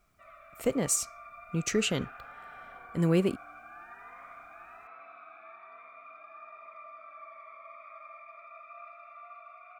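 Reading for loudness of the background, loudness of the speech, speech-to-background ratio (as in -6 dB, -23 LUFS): -48.5 LUFS, -30.0 LUFS, 18.5 dB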